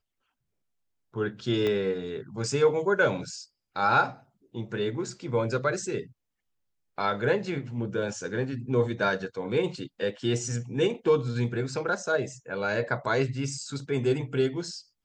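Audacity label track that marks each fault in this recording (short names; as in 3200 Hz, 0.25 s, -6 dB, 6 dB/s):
1.670000	1.670000	pop -17 dBFS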